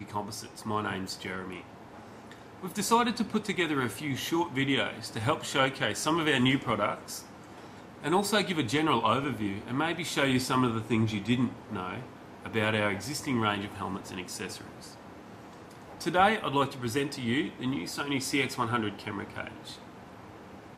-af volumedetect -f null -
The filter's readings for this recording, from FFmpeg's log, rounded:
mean_volume: -30.9 dB
max_volume: -9.0 dB